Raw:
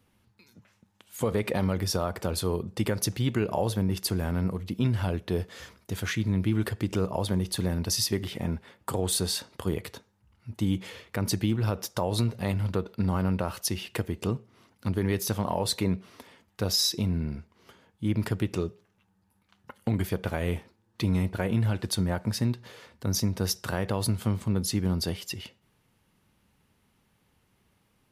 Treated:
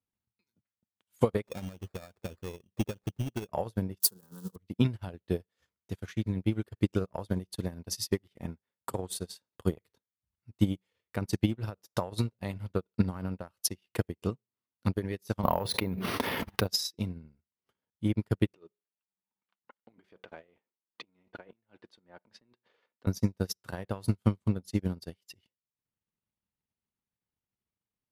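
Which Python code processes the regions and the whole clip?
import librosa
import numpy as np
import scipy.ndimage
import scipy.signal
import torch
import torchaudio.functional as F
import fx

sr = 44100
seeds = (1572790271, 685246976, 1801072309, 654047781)

y = fx.chain(x, sr, fx.air_absorb(metres=260.0),
    fx.sample_hold(seeds[0], rate_hz=3000.0, jitter_pct=0),
    fx.clip_hard(threshold_db=-22.0), at=(1.44, 3.49))
y = fx.chain(y, sr, fx.crossing_spikes(level_db=-22.0),
    fx.fixed_phaser(hz=440.0, stages=8), at=(4.0, 4.56))
y = fx.chain(y, sr, fx.air_absorb(metres=85.0),
    fx.resample_bad(factor=3, down='filtered', up='hold'),
    fx.env_flatten(amount_pct=100), at=(15.43, 16.67))
y = fx.chain(y, sr, fx.over_compress(threshold_db=-31.0, ratio=-1.0),
    fx.bandpass_edges(low_hz=300.0, high_hz=3400.0), at=(18.54, 23.07))
y = fx.transient(y, sr, attack_db=6, sustain_db=-12)
y = fx.upward_expand(y, sr, threshold_db=-36.0, expansion=2.5)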